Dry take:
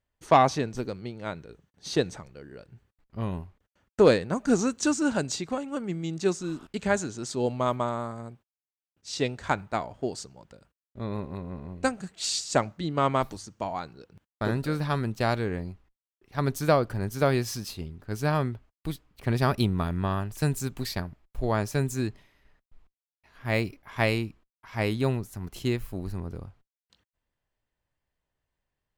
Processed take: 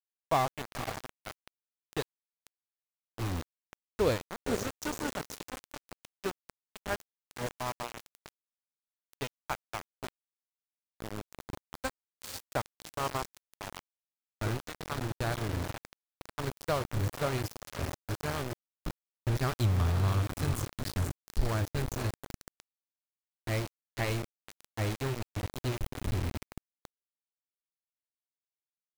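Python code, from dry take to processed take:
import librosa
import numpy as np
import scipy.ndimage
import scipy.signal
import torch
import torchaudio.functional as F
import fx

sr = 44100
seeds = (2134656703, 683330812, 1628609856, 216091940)

y = fx.low_shelf_res(x, sr, hz=120.0, db=12.5, q=1.5)
y = fx.echo_diffused(y, sr, ms=496, feedback_pct=57, wet_db=-8)
y = np.where(np.abs(y) >= 10.0 ** (-22.0 / 20.0), y, 0.0)
y = y * librosa.db_to_amplitude(-8.5)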